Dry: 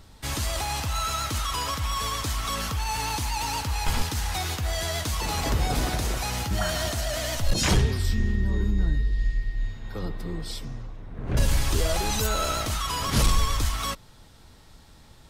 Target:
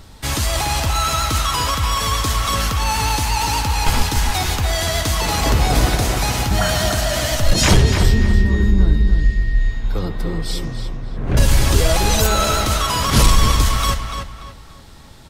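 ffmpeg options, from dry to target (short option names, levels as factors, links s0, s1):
-filter_complex "[0:a]asplit=2[s0][s1];[s1]adelay=290,lowpass=f=3900:p=1,volume=0.501,asplit=2[s2][s3];[s3]adelay=290,lowpass=f=3900:p=1,volume=0.34,asplit=2[s4][s5];[s5]adelay=290,lowpass=f=3900:p=1,volume=0.34,asplit=2[s6][s7];[s7]adelay=290,lowpass=f=3900:p=1,volume=0.34[s8];[s0][s2][s4][s6][s8]amix=inputs=5:normalize=0,volume=2.66"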